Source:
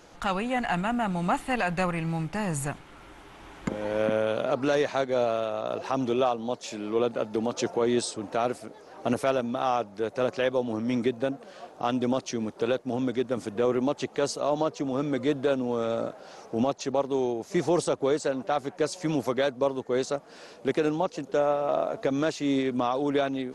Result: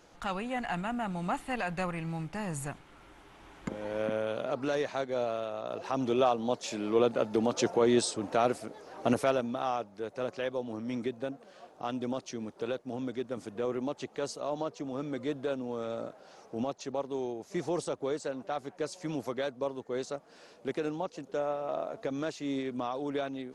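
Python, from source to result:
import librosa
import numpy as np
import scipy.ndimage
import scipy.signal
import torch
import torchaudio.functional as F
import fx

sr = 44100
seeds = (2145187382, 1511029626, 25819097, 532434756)

y = fx.gain(x, sr, db=fx.line((5.7, -6.5), (6.37, 0.0), (9.04, 0.0), (9.92, -8.0)))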